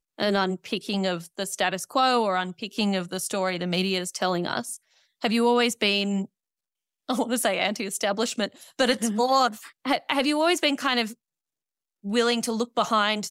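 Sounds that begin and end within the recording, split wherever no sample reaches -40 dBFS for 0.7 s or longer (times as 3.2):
7.09–11.13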